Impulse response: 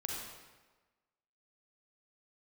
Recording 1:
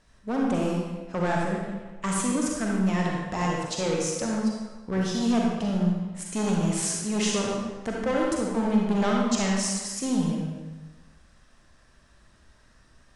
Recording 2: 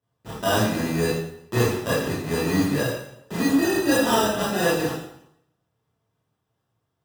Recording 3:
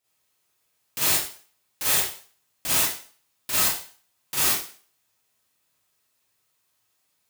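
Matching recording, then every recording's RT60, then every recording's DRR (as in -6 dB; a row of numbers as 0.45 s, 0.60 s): 1; 1.3 s, 0.75 s, 0.45 s; -2.0 dB, -9.5 dB, -9.0 dB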